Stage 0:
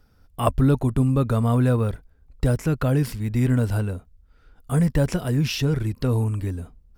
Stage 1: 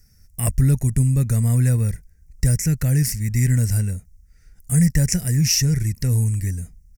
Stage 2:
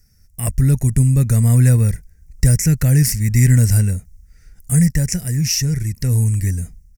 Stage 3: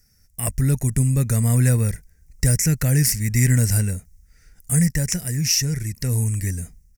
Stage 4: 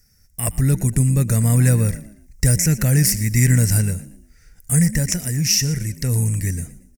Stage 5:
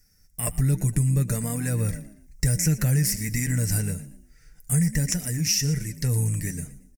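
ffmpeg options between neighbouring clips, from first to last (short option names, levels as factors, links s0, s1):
-af "firequalizer=gain_entry='entry(180,0);entry(260,-11);entry(1200,-20);entry(1900,4);entry(3300,-15);entry(5700,13);entry(13000,9)':delay=0.05:min_phase=1,volume=1.58"
-af "dynaudnorm=f=420:g=3:m=3.76,volume=0.891"
-af "lowshelf=f=210:g=-7.5,aeval=exprs='0.562*(abs(mod(val(0)/0.562+3,4)-2)-1)':c=same"
-filter_complex "[0:a]asplit=4[s0][s1][s2][s3];[s1]adelay=117,afreqshift=51,volume=0.141[s4];[s2]adelay=234,afreqshift=102,volume=0.0437[s5];[s3]adelay=351,afreqshift=153,volume=0.0136[s6];[s0][s4][s5][s6]amix=inputs=4:normalize=0,volume=1.26"
-af "aecho=1:1:6.7:0.33,acompressor=threshold=0.2:ratio=6,flanger=delay=3.4:depth=2.7:regen=-64:speed=0.56:shape=triangular"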